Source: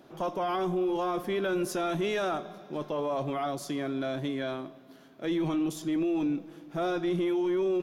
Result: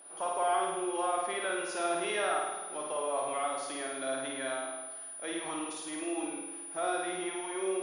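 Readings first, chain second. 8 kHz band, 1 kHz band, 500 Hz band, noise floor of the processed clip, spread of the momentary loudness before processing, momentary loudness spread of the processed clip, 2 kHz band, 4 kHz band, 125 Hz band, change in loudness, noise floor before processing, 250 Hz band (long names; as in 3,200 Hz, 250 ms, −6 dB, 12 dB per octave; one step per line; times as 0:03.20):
+11.0 dB, +1.5 dB, −4.0 dB, −44 dBFS, 8 LU, 7 LU, +2.0 dB, 0.0 dB, −21.0 dB, −3.0 dB, −54 dBFS, −10.0 dB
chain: high-pass filter 650 Hz 12 dB per octave
high-frequency loss of the air 100 metres
treble cut that deepens with the level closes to 2,600 Hz, closed at −27.5 dBFS
steady tone 9,700 Hz −52 dBFS
flutter between parallel walls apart 9 metres, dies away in 1.1 s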